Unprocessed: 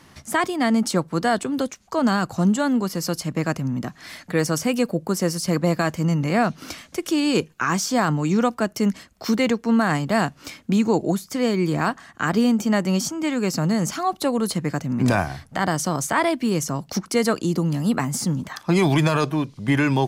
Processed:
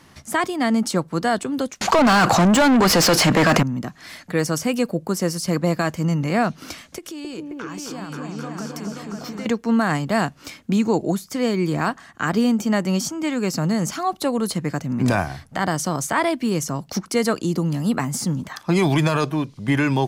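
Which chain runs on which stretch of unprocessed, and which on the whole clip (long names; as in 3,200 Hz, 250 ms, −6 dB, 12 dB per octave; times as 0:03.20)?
0:01.81–0:03.63: mid-hump overdrive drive 29 dB, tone 2,500 Hz, clips at −9 dBFS + envelope flattener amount 70%
0:06.98–0:09.46: downward compressor, threshold −32 dBFS + echo whose low-pass opens from repeat to repeat 265 ms, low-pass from 750 Hz, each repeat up 2 octaves, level 0 dB
whole clip: no processing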